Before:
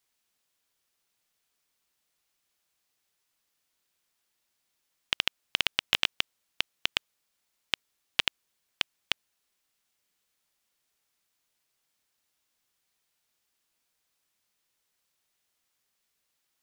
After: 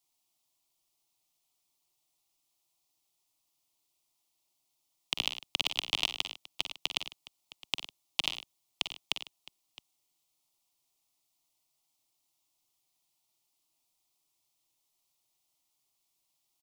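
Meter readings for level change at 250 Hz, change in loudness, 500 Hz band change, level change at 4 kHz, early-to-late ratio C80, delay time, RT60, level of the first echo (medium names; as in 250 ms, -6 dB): -1.5 dB, -3.0 dB, -3.0 dB, -2.0 dB, no reverb, 46 ms, no reverb, -11.5 dB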